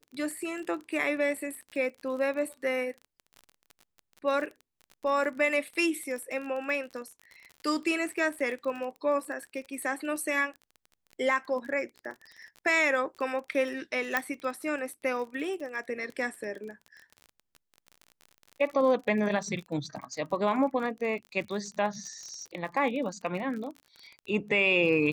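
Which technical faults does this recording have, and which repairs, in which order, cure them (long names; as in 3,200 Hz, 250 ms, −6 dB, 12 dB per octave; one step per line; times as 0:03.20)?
surface crackle 36 per second −37 dBFS
0:14.17: click −12 dBFS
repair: click removal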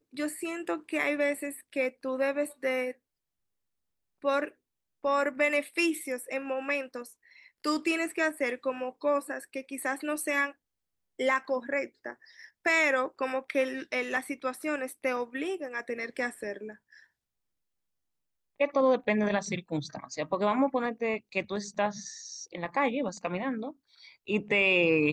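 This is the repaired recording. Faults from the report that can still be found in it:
0:14.17: click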